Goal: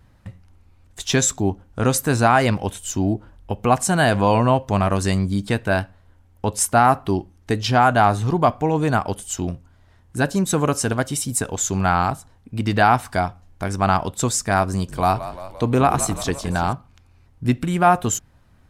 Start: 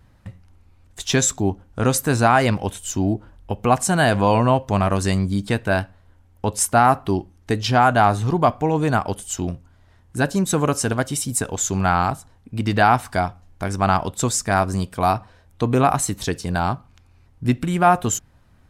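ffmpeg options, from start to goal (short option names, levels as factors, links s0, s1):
-filter_complex "[0:a]asettb=1/sr,asplit=3[s0][s1][s2];[s0]atrim=end=14.714[s3];[s1]atrim=start=14.71:end=16.73,asetpts=PTS-STARTPTS,afade=t=in:d=0.004:c=qsin,afade=t=out:st=2.016:d=0.004:c=qsin,asplit=8[s4][s5][s6][s7][s8][s9][s10][s11];[s5]adelay=172,afreqshift=-48,volume=0.224[s12];[s6]adelay=344,afreqshift=-96,volume=0.141[s13];[s7]adelay=516,afreqshift=-144,volume=0.0891[s14];[s8]adelay=688,afreqshift=-192,volume=0.0562[s15];[s9]adelay=860,afreqshift=-240,volume=0.0351[s16];[s10]adelay=1032,afreqshift=-288,volume=0.0221[s17];[s11]adelay=1204,afreqshift=-336,volume=0.014[s18];[s4][s12][s13][s14][s15][s16][s17][s18]amix=inputs=8:normalize=0,atrim=end_sample=89082[s19];[s2]atrim=start=16.726[s20];[s3][s19]acrossfade=d=0.004:c1=hsin:c2=qsin[s21];[s21][s20]acrossfade=d=0.004:c1=qsin:c2=hsin"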